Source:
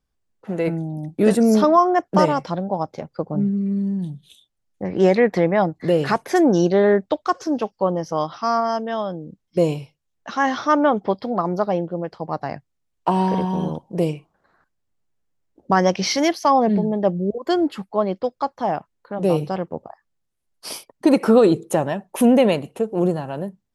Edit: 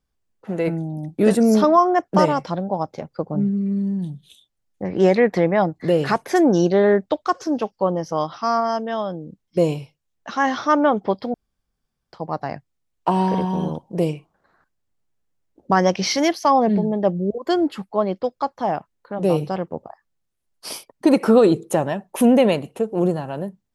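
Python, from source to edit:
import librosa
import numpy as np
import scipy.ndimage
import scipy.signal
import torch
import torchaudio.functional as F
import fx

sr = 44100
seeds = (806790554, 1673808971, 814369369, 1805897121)

y = fx.edit(x, sr, fx.room_tone_fill(start_s=11.34, length_s=0.79), tone=tone)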